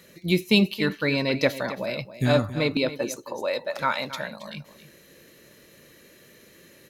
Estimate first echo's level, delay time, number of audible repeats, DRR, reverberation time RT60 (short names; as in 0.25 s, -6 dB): -14.0 dB, 0.272 s, 1, none, none